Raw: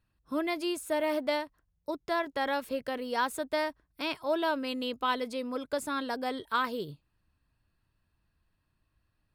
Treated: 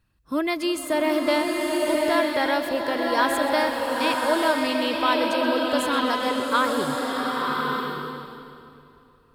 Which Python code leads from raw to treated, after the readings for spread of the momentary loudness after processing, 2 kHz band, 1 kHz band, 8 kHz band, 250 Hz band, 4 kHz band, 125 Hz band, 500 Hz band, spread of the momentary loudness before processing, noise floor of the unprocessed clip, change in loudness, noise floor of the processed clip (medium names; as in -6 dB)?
6 LU, +10.5 dB, +9.5 dB, +10.5 dB, +10.5 dB, +10.5 dB, +11.0 dB, +9.5 dB, 7 LU, -78 dBFS, +9.0 dB, -57 dBFS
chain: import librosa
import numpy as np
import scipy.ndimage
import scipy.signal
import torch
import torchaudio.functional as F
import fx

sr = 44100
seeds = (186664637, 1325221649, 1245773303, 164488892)

p1 = fx.peak_eq(x, sr, hz=700.0, db=-2.0, octaves=0.77)
p2 = p1 + fx.echo_split(p1, sr, split_hz=1200.0, low_ms=310, high_ms=127, feedback_pct=52, wet_db=-15, dry=0)
p3 = fx.rev_bloom(p2, sr, seeds[0], attack_ms=1100, drr_db=-0.5)
y = p3 * 10.0 ** (7.0 / 20.0)